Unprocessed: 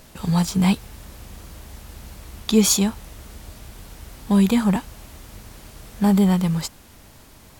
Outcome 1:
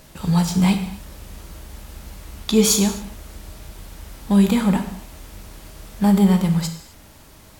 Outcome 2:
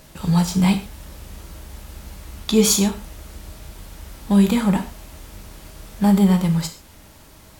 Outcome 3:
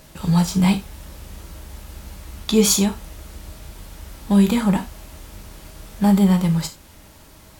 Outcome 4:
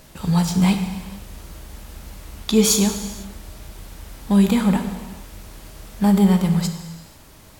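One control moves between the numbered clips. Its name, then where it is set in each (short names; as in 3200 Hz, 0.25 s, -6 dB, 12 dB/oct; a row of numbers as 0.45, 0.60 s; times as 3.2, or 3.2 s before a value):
non-linear reverb, gate: 0.29, 0.16, 0.11, 0.52 s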